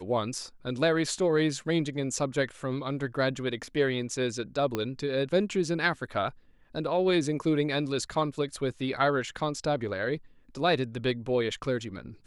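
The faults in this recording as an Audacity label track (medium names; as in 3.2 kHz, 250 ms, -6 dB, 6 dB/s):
4.750000	4.750000	pop -15 dBFS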